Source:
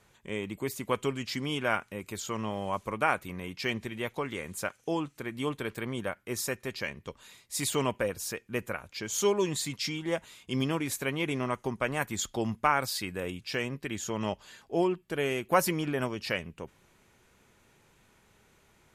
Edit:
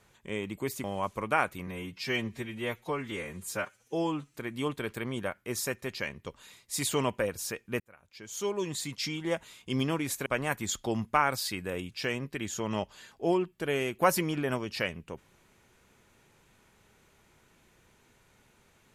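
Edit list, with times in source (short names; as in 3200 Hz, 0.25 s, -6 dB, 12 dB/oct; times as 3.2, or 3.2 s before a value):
0.84–2.54 cut
3.37–5.15 stretch 1.5×
8.61–9.97 fade in linear
11.07–11.76 cut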